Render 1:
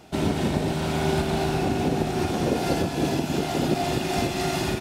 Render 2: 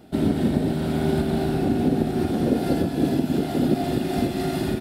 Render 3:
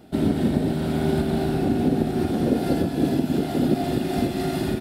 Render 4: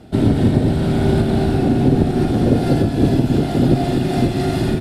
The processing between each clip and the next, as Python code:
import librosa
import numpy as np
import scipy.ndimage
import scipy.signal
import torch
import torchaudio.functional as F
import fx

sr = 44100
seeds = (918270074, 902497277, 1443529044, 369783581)

y1 = fx.graphic_eq_15(x, sr, hz=(250, 1000, 2500, 6300), db=(7, -8, -7, -12))
y2 = y1
y3 = fx.octave_divider(y2, sr, octaves=1, level_db=-1.0)
y3 = scipy.signal.sosfilt(scipy.signal.butter(2, 10000.0, 'lowpass', fs=sr, output='sos'), y3)
y3 = y3 * 10.0 ** (5.0 / 20.0)